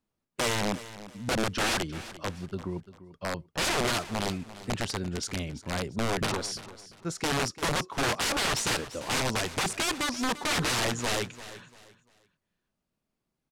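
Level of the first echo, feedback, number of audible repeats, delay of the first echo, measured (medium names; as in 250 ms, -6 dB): -15.5 dB, 30%, 2, 344 ms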